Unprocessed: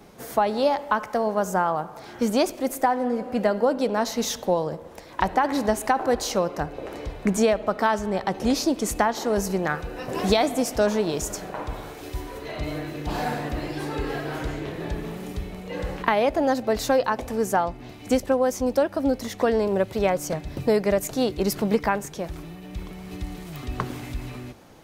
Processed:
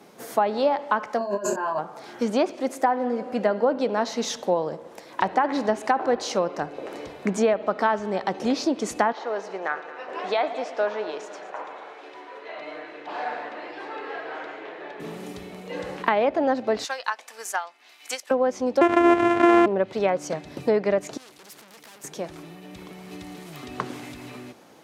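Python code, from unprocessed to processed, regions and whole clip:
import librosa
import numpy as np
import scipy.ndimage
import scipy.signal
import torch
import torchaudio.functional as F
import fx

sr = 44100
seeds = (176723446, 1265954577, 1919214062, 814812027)

y = fx.chain(x, sr, fx.ripple_eq(per_octave=1.4, db=17),
    fx.over_compress(threshold_db=-28.0, ratio=-1.0),
    fx.doubler(ms=25.0, db=-4), at=(1.18, 1.79))
y = fx.chain(y, sr, fx.bandpass_edges(low_hz=560.0, high_hz=2600.0),
    fx.echo_heads(ms=111, heads='first and second', feedback_pct=46, wet_db=-17.0), at=(9.12, 15.0))
y = fx.chain(y, sr, fx.highpass(hz=1400.0, slope=12),
    fx.transient(attack_db=6, sustain_db=-3), at=(16.84, 18.31))
y = fx.chain(y, sr, fx.sample_sort(block=128),
    fx.comb(ms=2.8, depth=0.72),
    fx.env_flatten(amount_pct=70), at=(18.81, 19.66))
y = fx.chain(y, sr, fx.tube_stage(drive_db=35.0, bias=0.5),
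    fx.spectral_comp(ratio=2.0), at=(21.17, 22.04))
y = scipy.signal.sosfilt(scipy.signal.butter(2, 210.0, 'highpass', fs=sr, output='sos'), y)
y = fx.env_lowpass_down(y, sr, base_hz=2500.0, full_db=-16.5)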